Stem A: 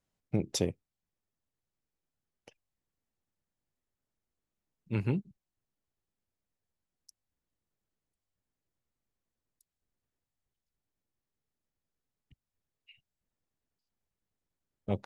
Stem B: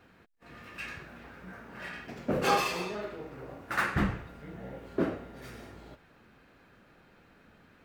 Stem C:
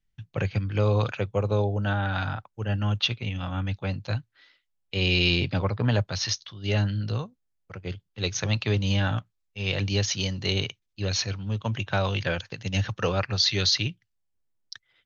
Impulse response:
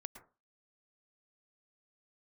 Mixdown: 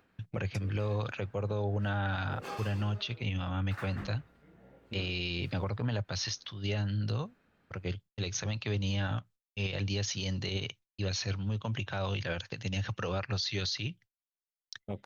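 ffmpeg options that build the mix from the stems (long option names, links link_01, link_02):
-filter_complex "[0:a]volume=-5dB[link_01];[1:a]acompressor=mode=upward:threshold=-48dB:ratio=2.5,volume=-15dB[link_02];[2:a]agate=range=-13dB:threshold=-50dB:ratio=16:detection=peak,volume=-0.5dB,asplit=2[link_03][link_04];[link_04]apad=whole_len=663774[link_05];[link_01][link_05]sidechaincompress=threshold=-40dB:ratio=3:attack=16:release=138[link_06];[link_06][link_03]amix=inputs=2:normalize=0,agate=range=-33dB:threshold=-44dB:ratio=3:detection=peak,acompressor=threshold=-27dB:ratio=6,volume=0dB[link_07];[link_02][link_07]amix=inputs=2:normalize=0,alimiter=level_in=0.5dB:limit=-24dB:level=0:latency=1:release=49,volume=-0.5dB"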